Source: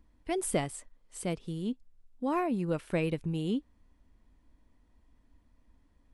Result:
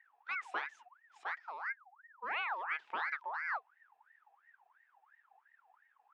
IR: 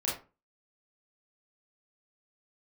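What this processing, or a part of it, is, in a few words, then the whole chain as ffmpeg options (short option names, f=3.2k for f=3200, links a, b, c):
voice changer toy: -af "aeval=exprs='val(0)*sin(2*PI*1300*n/s+1300*0.45/2.9*sin(2*PI*2.9*n/s))':c=same,highpass=540,equalizer=f=570:t=q:w=4:g=-7,equalizer=f=840:t=q:w=4:g=7,equalizer=f=1.7k:t=q:w=4:g=5,equalizer=f=2.5k:t=q:w=4:g=4,equalizer=f=4.3k:t=q:w=4:g=-6,lowpass=f=4.6k:w=0.5412,lowpass=f=4.6k:w=1.3066,volume=-7dB"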